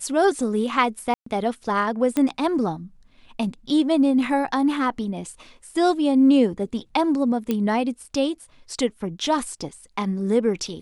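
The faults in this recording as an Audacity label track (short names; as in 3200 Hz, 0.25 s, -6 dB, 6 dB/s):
1.140000	1.260000	gap 0.124 s
2.170000	2.170000	pop -10 dBFS
7.510000	7.510000	pop -11 dBFS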